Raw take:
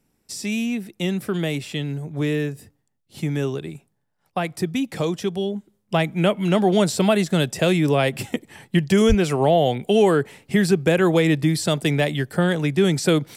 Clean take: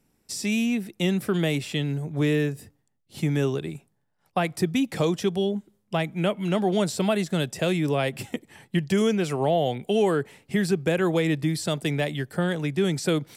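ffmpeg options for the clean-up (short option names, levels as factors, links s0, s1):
-filter_complex "[0:a]asplit=3[s0][s1][s2];[s0]afade=t=out:st=9.08:d=0.02[s3];[s1]highpass=f=140:w=0.5412,highpass=f=140:w=1.3066,afade=t=in:st=9.08:d=0.02,afade=t=out:st=9.2:d=0.02[s4];[s2]afade=t=in:st=9.2:d=0.02[s5];[s3][s4][s5]amix=inputs=3:normalize=0,asetnsamples=n=441:p=0,asendcmd='5.89 volume volume -5.5dB',volume=1"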